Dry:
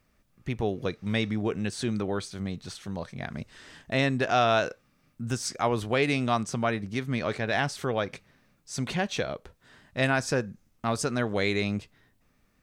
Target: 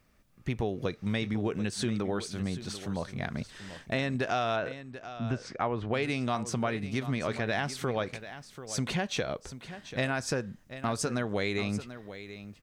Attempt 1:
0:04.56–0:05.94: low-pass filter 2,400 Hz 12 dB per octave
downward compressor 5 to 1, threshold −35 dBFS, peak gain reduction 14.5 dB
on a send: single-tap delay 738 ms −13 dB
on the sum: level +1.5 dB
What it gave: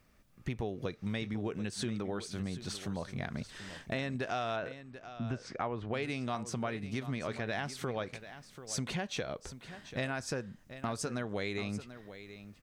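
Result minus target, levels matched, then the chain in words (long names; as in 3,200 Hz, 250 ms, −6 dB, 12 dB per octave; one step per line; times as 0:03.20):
downward compressor: peak gain reduction +5.5 dB
0:04.56–0:05.94: low-pass filter 2,400 Hz 12 dB per octave
downward compressor 5 to 1, threshold −28 dBFS, peak gain reduction 9 dB
on a send: single-tap delay 738 ms −13 dB
on the sum: level +1.5 dB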